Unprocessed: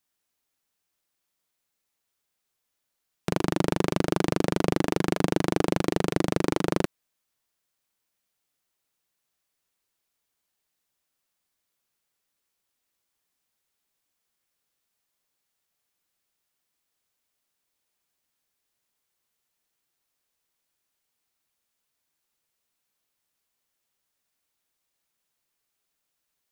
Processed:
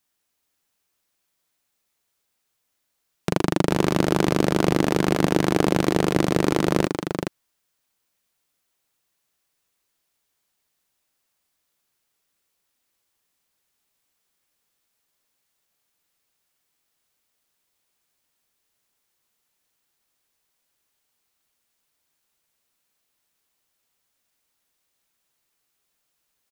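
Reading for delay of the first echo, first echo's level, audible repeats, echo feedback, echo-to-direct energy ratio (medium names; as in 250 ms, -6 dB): 425 ms, -6.0 dB, 1, no regular repeats, -6.0 dB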